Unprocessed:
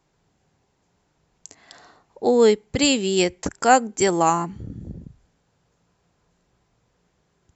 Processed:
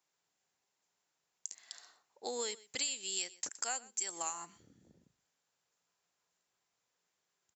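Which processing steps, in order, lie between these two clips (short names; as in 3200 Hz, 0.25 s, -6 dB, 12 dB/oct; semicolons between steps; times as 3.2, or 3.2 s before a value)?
differentiator; compressor 8:1, threshold -37 dBFS, peak gain reduction 15.5 dB; on a send: echo 0.124 s -20.5 dB; on the sum: mismatched tape noise reduction decoder only; gain +2.5 dB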